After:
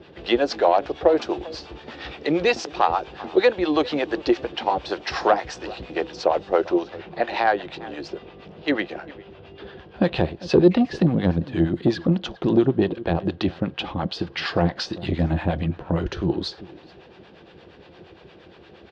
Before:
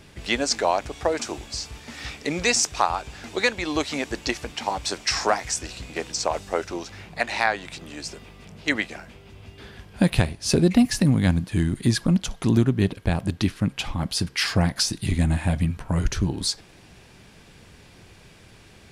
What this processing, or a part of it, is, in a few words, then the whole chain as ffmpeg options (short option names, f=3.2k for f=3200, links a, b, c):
guitar amplifier with harmonic tremolo: -filter_complex "[0:a]asplit=2[a][b];[b]adelay=396.5,volume=-21dB,highshelf=f=4k:g=-8.92[c];[a][c]amix=inputs=2:normalize=0,acrossover=split=610[d][e];[d]aeval=exprs='val(0)*(1-0.7/2+0.7/2*cos(2*PI*8.6*n/s))':c=same[f];[e]aeval=exprs='val(0)*(1-0.7/2-0.7/2*cos(2*PI*8.6*n/s))':c=same[g];[f][g]amix=inputs=2:normalize=0,asoftclip=type=tanh:threshold=-15dB,highpass=84,equalizer=f=110:t=q:w=4:g=-10,equalizer=f=240:t=q:w=4:g=-4,equalizer=f=350:t=q:w=4:g=9,equalizer=f=510:t=q:w=4:g=7,equalizer=f=750:t=q:w=4:g=4,equalizer=f=2.2k:t=q:w=4:g=-7,lowpass=f=3.8k:w=0.5412,lowpass=f=3.8k:w=1.3066,volume=5.5dB"